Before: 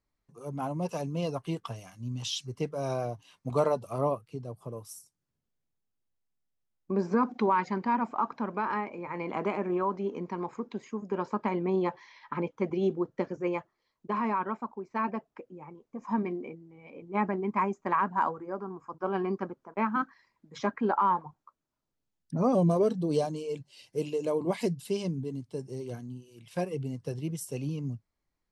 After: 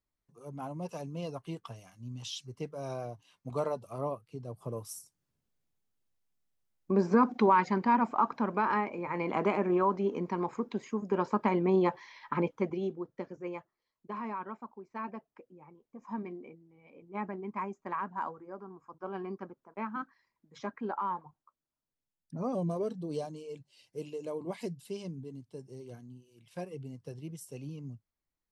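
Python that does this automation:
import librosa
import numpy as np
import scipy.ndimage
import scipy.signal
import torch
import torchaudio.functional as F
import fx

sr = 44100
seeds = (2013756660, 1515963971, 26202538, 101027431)

y = fx.gain(x, sr, db=fx.line((4.21, -6.5), (4.72, 2.0), (12.5, 2.0), (12.93, -8.5)))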